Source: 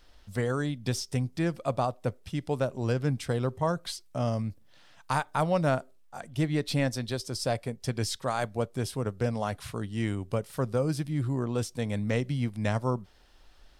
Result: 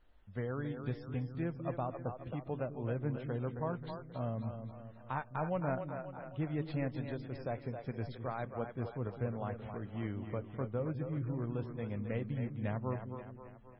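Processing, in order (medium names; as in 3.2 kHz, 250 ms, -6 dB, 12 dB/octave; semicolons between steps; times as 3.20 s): distance through air 430 m; two-band feedback delay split 340 Hz, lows 204 ms, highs 267 ms, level -7 dB; trim -8 dB; MP3 16 kbps 22.05 kHz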